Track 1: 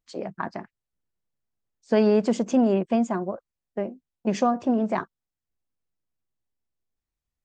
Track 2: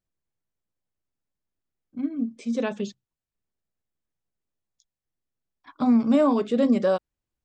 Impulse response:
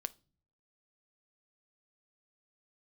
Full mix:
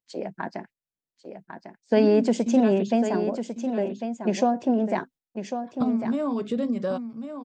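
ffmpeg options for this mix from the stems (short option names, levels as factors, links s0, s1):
-filter_complex "[0:a]highpass=160,equalizer=f=1200:t=o:w=0.27:g=-13.5,volume=1.12,asplit=2[s0][s1];[s1]volume=0.376[s2];[1:a]equalizer=f=140:w=1:g=8,agate=range=0.282:threshold=0.0112:ratio=16:detection=peak,acompressor=threshold=0.0708:ratio=6,volume=0.944,asplit=2[s3][s4];[s4]volume=0.335[s5];[s2][s5]amix=inputs=2:normalize=0,aecho=0:1:1099:1[s6];[s0][s3][s6]amix=inputs=3:normalize=0,agate=range=0.398:threshold=0.00398:ratio=16:detection=peak"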